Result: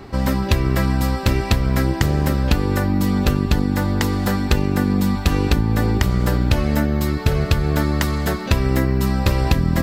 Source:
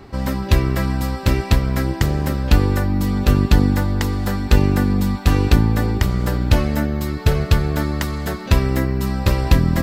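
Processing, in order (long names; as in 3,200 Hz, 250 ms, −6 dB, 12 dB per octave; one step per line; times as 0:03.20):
mains-hum notches 50/100 Hz
downward compressor, threshold −16 dBFS, peak gain reduction 9 dB
level +3.5 dB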